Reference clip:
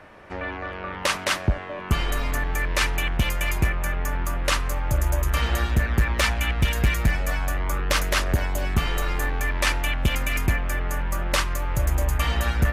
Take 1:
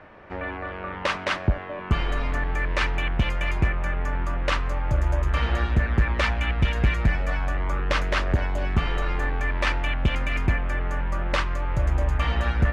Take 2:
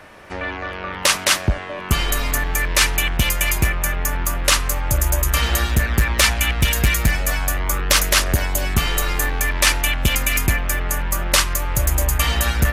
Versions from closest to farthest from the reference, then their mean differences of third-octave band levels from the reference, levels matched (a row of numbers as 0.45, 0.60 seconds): 2, 1; 3.5, 4.5 decibels